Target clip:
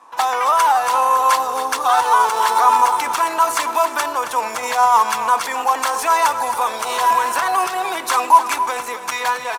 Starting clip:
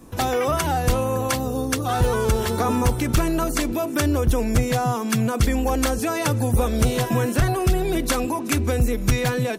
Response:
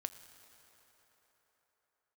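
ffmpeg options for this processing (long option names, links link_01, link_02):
-filter_complex "[0:a]highshelf=frequency=10000:gain=9.5,dynaudnorm=framelen=160:gausssize=11:maxgain=11.5dB,alimiter=limit=-11dB:level=0:latency=1:release=11,highpass=frequency=960:width_type=q:width=4.9,adynamicsmooth=sensitivity=7:basefreq=4300,aecho=1:1:270:0.266,asplit=2[link_01][link_02];[1:a]atrim=start_sample=2205[link_03];[link_02][link_03]afir=irnorm=-1:irlink=0,volume=3.5dB[link_04];[link_01][link_04]amix=inputs=2:normalize=0,volume=-5dB"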